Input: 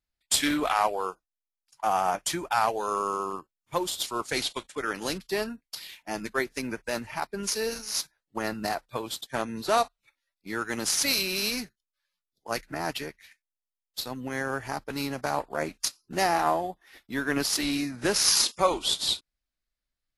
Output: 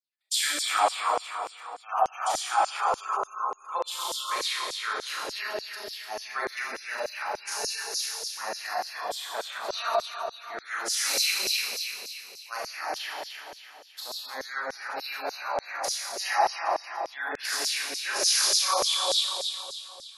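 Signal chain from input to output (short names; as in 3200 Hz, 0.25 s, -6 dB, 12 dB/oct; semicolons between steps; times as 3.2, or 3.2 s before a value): Schroeder reverb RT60 2.7 s, combs from 29 ms, DRR -7 dB; spectral gate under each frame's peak -30 dB strong; LFO high-pass saw down 3.4 Hz 500–6000 Hz; gain -8.5 dB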